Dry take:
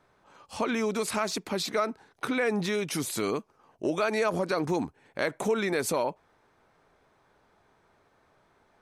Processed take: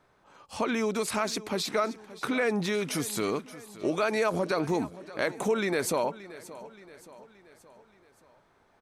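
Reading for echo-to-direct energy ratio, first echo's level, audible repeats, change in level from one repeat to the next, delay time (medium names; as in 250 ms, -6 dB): -15.5 dB, -17.0 dB, 4, -6.0 dB, 575 ms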